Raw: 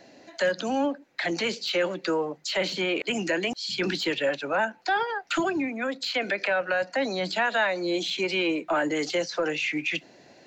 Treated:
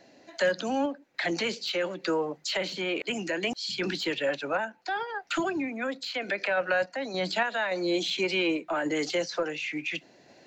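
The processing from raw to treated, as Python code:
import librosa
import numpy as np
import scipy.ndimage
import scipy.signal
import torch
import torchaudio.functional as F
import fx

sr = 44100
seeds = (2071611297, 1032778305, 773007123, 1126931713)

y = fx.tremolo_random(x, sr, seeds[0], hz=3.5, depth_pct=55)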